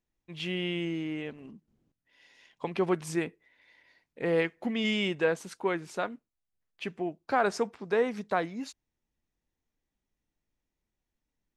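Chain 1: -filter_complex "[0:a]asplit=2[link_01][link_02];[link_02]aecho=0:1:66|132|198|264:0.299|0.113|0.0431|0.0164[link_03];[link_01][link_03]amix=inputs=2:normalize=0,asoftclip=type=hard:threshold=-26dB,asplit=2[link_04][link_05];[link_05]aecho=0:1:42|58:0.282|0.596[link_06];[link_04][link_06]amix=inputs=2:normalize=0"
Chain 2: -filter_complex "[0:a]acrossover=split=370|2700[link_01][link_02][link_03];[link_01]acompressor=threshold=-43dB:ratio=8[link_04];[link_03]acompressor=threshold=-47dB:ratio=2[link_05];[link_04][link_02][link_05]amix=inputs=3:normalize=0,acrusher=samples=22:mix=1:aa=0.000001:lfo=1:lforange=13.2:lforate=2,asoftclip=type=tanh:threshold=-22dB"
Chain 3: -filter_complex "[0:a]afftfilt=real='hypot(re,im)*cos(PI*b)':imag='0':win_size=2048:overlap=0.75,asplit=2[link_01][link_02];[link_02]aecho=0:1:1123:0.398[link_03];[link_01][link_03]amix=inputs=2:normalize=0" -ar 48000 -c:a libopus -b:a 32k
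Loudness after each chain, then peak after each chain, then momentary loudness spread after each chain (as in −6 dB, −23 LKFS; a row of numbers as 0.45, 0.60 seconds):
−31.5, −35.0, −36.0 LKFS; −20.5, −22.0, −13.0 dBFS; 12, 13, 14 LU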